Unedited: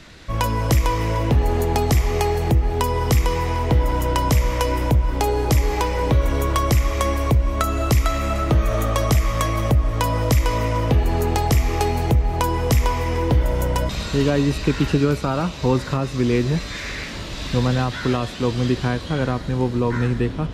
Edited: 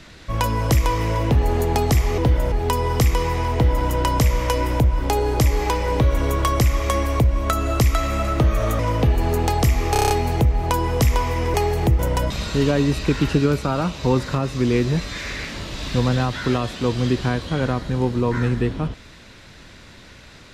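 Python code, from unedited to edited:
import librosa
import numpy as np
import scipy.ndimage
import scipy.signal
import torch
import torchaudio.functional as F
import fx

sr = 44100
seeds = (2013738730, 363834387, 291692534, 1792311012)

y = fx.edit(x, sr, fx.swap(start_s=2.18, length_s=0.45, other_s=13.24, other_length_s=0.34),
    fx.cut(start_s=8.9, length_s=1.77),
    fx.stutter(start_s=11.8, slice_s=0.03, count=7), tone=tone)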